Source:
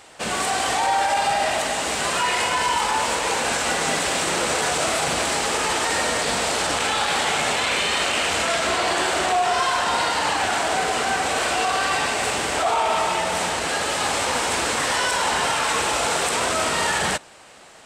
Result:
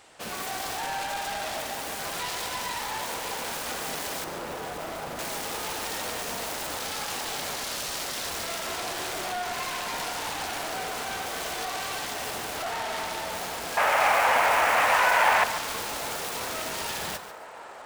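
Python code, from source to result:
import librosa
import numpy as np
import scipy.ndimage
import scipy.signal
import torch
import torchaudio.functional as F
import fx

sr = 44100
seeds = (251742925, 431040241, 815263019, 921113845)

y = fx.self_delay(x, sr, depth_ms=0.29)
y = fx.high_shelf(y, sr, hz=2100.0, db=-12.0, at=(4.24, 5.19))
y = fx.echo_wet_bandpass(y, sr, ms=755, feedback_pct=78, hz=820.0, wet_db=-13.0)
y = 10.0 ** (-19.0 / 20.0) * np.tanh(y / 10.0 ** (-19.0 / 20.0))
y = fx.band_shelf(y, sr, hz=1200.0, db=14.5, octaves=2.6, at=(13.77, 15.44))
y = fx.echo_crushed(y, sr, ms=143, feedback_pct=35, bits=6, wet_db=-11.0)
y = y * 10.0 ** (-7.0 / 20.0)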